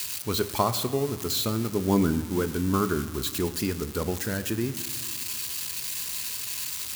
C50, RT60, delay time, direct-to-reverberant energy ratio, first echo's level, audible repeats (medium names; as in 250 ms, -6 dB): 13.0 dB, 1.9 s, no echo, 10.0 dB, no echo, no echo